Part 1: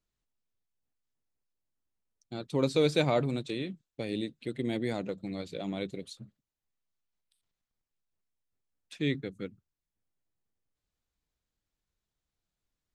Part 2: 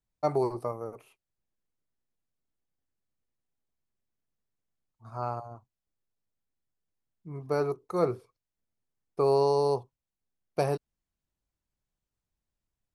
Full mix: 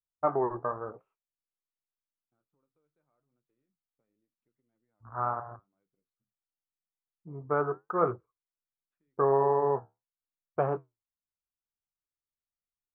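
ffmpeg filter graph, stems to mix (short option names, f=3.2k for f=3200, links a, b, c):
-filter_complex "[0:a]acompressor=threshold=-38dB:ratio=5,volume=-19.5dB[a];[1:a]volume=1.5dB[b];[a][b]amix=inputs=2:normalize=0,afwtdn=0.0112,flanger=delay=6.6:depth=7.5:regen=-67:speed=0.86:shape=triangular,lowpass=f=1.3k:t=q:w=3.7"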